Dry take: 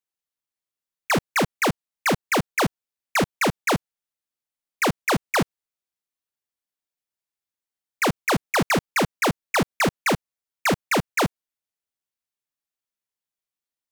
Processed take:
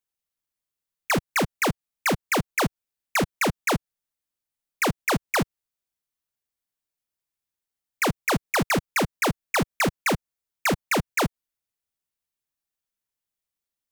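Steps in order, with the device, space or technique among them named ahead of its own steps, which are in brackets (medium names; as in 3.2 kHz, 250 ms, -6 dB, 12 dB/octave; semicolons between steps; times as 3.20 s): ASMR close-microphone chain (bass shelf 140 Hz +8 dB; compression, threshold -21 dBFS, peak gain reduction 5.5 dB; treble shelf 9.2 kHz +4 dB)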